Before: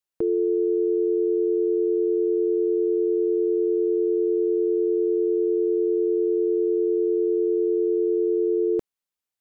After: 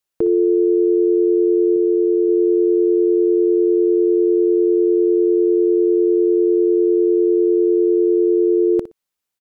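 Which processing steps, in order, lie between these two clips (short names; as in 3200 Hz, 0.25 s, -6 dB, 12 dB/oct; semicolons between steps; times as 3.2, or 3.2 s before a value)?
1.76–2.29 bell 160 Hz -15 dB 0.56 oct; feedback echo 60 ms, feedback 17%, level -13.5 dB; gain +6.5 dB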